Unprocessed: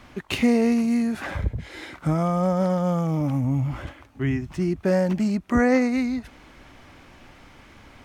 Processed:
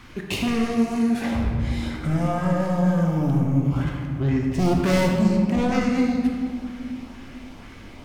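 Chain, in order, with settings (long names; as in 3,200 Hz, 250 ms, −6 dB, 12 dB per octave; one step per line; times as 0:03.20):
0:04.58–0:05.09: leveller curve on the samples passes 3
soft clipping −22.5 dBFS, distortion −9 dB
auto-filter notch saw up 2.1 Hz 550–2,300 Hz
convolution reverb RT60 2.2 s, pre-delay 14 ms, DRR 0 dB
level +3 dB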